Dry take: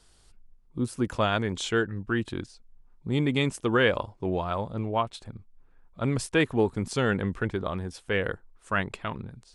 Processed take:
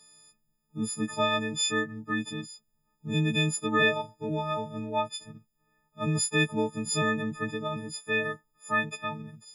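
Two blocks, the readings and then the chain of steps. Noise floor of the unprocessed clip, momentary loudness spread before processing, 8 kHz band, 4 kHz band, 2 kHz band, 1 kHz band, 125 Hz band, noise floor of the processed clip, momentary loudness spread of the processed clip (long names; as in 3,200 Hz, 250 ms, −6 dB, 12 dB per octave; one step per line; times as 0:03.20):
−59 dBFS, 11 LU, +8.5 dB, +3.0 dB, +1.0 dB, −0.5 dB, −2.5 dB, −75 dBFS, 11 LU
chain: every partial snapped to a pitch grid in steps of 6 semitones
low shelf with overshoot 100 Hz −14 dB, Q 3
level −6 dB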